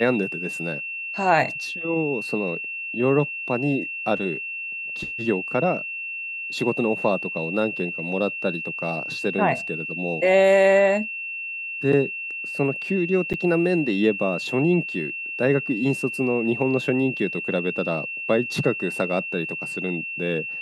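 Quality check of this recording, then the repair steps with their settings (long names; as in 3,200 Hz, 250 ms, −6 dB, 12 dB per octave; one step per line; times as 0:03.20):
whistle 2,700 Hz −29 dBFS
0:13.33–0:13.34: drop-out 7.8 ms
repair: notch filter 2,700 Hz, Q 30
repair the gap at 0:13.33, 7.8 ms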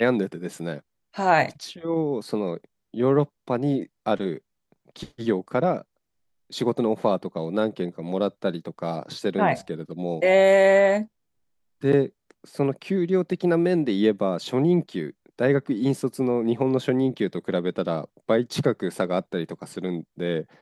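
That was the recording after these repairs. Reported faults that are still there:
none of them is left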